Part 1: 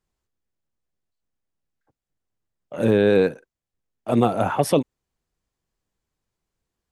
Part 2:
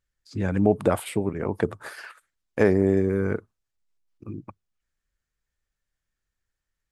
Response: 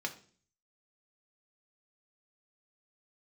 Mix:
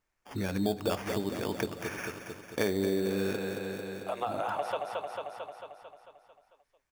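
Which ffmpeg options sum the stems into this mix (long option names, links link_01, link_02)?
-filter_complex "[0:a]highpass=frequency=600:width=0.5412,highpass=frequency=600:width=1.3066,acrossover=split=3700[link_01][link_02];[link_02]acompressor=threshold=-47dB:ratio=4:attack=1:release=60[link_03];[link_01][link_03]amix=inputs=2:normalize=0,volume=-3dB,asplit=2[link_04][link_05];[link_05]volume=-5dB[link_06];[1:a]lowshelf=frequency=410:gain=-4,acrusher=samples=11:mix=1:aa=0.000001,volume=-1.5dB,asplit=4[link_07][link_08][link_09][link_10];[link_08]volume=-4.5dB[link_11];[link_09]volume=-6.5dB[link_12];[link_10]apad=whole_len=305019[link_13];[link_04][link_13]sidechaincompress=threshold=-30dB:ratio=8:attack=16:release=390[link_14];[2:a]atrim=start_sample=2205[link_15];[link_11][link_15]afir=irnorm=-1:irlink=0[link_16];[link_06][link_12]amix=inputs=2:normalize=0,aecho=0:1:223|446|669|892|1115|1338|1561|1784|2007:1|0.59|0.348|0.205|0.121|0.0715|0.0422|0.0249|0.0147[link_17];[link_14][link_07][link_16][link_17]amix=inputs=4:normalize=0,acompressor=threshold=-34dB:ratio=2"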